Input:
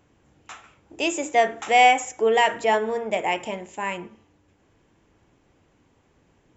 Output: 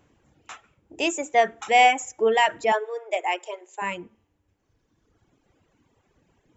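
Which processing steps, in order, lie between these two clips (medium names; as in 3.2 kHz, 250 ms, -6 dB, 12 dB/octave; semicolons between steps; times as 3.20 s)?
2.72–3.82 s: elliptic high-pass 370 Hz, stop band 40 dB; reverb removal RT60 1.9 s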